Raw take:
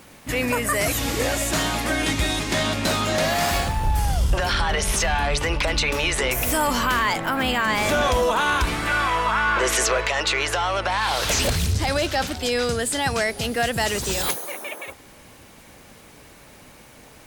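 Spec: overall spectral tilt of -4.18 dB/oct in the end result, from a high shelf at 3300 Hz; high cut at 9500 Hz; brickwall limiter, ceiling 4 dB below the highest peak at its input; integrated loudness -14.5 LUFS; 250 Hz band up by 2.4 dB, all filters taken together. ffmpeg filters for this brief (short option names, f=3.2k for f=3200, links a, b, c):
-af "lowpass=9.5k,equalizer=f=250:t=o:g=3,highshelf=f=3.3k:g=-5.5,volume=10dB,alimiter=limit=-5.5dB:level=0:latency=1"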